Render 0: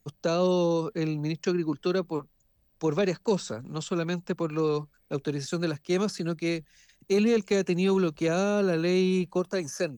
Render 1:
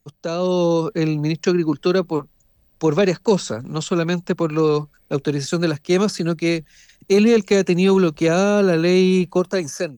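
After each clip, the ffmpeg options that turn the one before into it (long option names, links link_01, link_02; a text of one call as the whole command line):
ffmpeg -i in.wav -af "dynaudnorm=framelen=220:gausssize=5:maxgain=9dB" out.wav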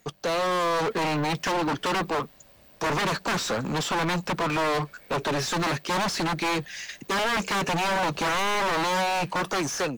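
ffmpeg -i in.wav -filter_complex "[0:a]aeval=exprs='0.119*(abs(mod(val(0)/0.119+3,4)-2)-1)':channel_layout=same,asplit=2[link_01][link_02];[link_02]highpass=frequency=720:poles=1,volume=26dB,asoftclip=type=tanh:threshold=-18dB[link_03];[link_01][link_03]amix=inputs=2:normalize=0,lowpass=frequency=3500:poles=1,volume=-6dB,volume=-2.5dB" out.wav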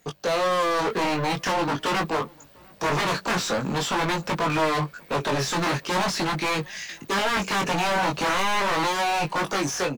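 ffmpeg -i in.wav -filter_complex "[0:a]flanger=delay=19:depth=3.3:speed=0.44,asplit=2[link_01][link_02];[link_02]adelay=699.7,volume=-27dB,highshelf=frequency=4000:gain=-15.7[link_03];[link_01][link_03]amix=inputs=2:normalize=0,volume=4.5dB" out.wav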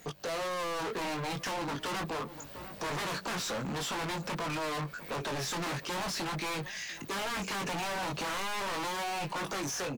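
ffmpeg -i in.wav -af "asoftclip=type=hard:threshold=-28.5dB,alimiter=level_in=15.5dB:limit=-24dB:level=0:latency=1:release=137,volume=-15.5dB,volume=6.5dB" out.wav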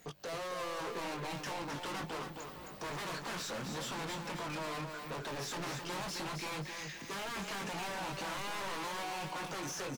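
ffmpeg -i in.wav -af "aecho=1:1:264|528|792|1056|1320:0.501|0.19|0.0724|0.0275|0.0105,volume=-6dB" out.wav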